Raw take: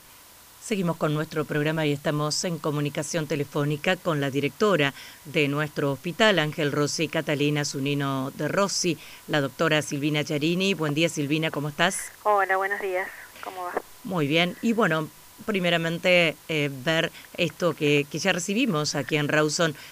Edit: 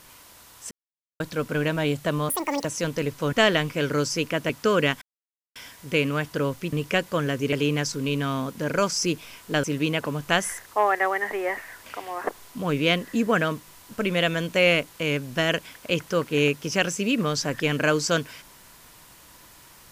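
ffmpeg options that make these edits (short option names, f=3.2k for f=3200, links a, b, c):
-filter_complex "[0:a]asplit=11[a][b][c][d][e][f][g][h][i][j][k];[a]atrim=end=0.71,asetpts=PTS-STARTPTS,afade=t=out:st=0.706:d=0.004:c=hsin[l];[b]atrim=start=0.71:end=1.2,asetpts=PTS-STARTPTS,volume=0[m];[c]atrim=start=1.2:end=2.294,asetpts=PTS-STARTPTS,afade=t=in:d=0.004:c=hsin[n];[d]atrim=start=2.29:end=2.98,asetpts=PTS-STARTPTS,asetrate=85554,aresample=44100,atrim=end_sample=15685,asetpts=PTS-STARTPTS[o];[e]atrim=start=2.976:end=3.662[p];[f]atrim=start=6.148:end=7.322[q];[g]atrim=start=4.458:end=4.98,asetpts=PTS-STARTPTS,afade=t=out:st=0.518:d=0.004:c=hsin,apad=pad_dur=0.54[r];[h]atrim=start=4.98:end=6.152,asetpts=PTS-STARTPTS,afade=t=in:d=0.004:c=hsin[s];[i]atrim=start=3.658:end=4.462[t];[j]atrim=start=7.318:end=9.432[u];[k]atrim=start=11.128[v];[l][m][n]concat=n=3:v=0:a=1[w];[w][o]acrossfade=d=0.004:c1=hsin:c2=hsin[x];[x][p]acrossfade=d=0.004:c1=hsin:c2=hsin[y];[y][q]acrossfade=d=0.004:c1=hsin:c2=hsin[z];[r][s]concat=n=2:v=0:a=1[aa];[z][aa]acrossfade=d=0.004:c1=hsin:c2=hsin[ab];[ab][t]acrossfade=d=0.004:c1=hsin:c2=hsin[ac];[ac][u]acrossfade=d=0.004:c1=hsin:c2=hsin[ad];[ad][v]acrossfade=d=0.004:c1=hsin:c2=hsin"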